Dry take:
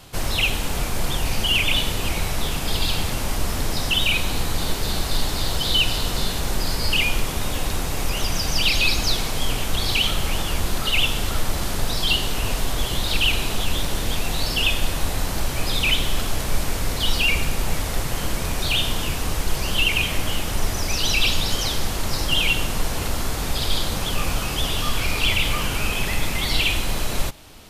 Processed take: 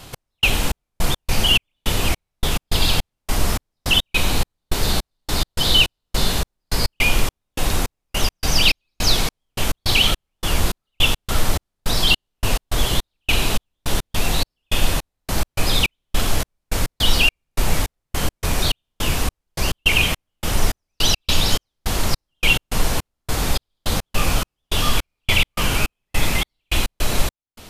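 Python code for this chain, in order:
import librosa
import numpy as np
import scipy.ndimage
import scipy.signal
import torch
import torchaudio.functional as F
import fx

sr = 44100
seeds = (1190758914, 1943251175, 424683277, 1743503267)

y = fx.step_gate(x, sr, bpm=105, pattern='x..xx..x.x', floor_db=-60.0, edge_ms=4.5)
y = y * librosa.db_to_amplitude(4.5)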